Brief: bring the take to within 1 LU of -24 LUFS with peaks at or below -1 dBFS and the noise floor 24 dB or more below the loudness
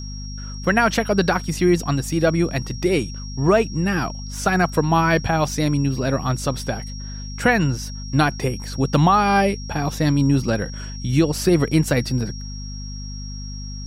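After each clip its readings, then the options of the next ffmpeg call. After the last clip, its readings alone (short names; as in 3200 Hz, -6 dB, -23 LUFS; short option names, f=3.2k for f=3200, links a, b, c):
hum 50 Hz; harmonics up to 250 Hz; hum level -30 dBFS; steady tone 5600 Hz; tone level -37 dBFS; loudness -20.5 LUFS; peak -5.0 dBFS; loudness target -24.0 LUFS
-> -af "bandreject=f=50:t=h:w=6,bandreject=f=100:t=h:w=6,bandreject=f=150:t=h:w=6,bandreject=f=200:t=h:w=6,bandreject=f=250:t=h:w=6"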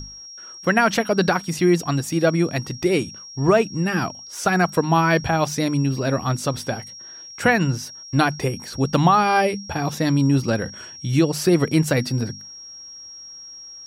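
hum none; steady tone 5600 Hz; tone level -37 dBFS
-> -af "bandreject=f=5.6k:w=30"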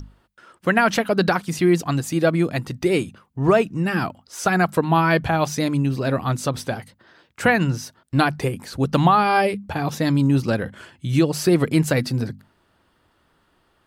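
steady tone none; loudness -21.0 LUFS; peak -4.5 dBFS; loudness target -24.0 LUFS
-> -af "volume=-3dB"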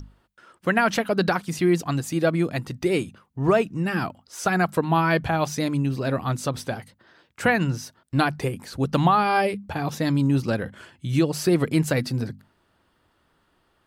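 loudness -24.0 LUFS; peak -7.5 dBFS; noise floor -67 dBFS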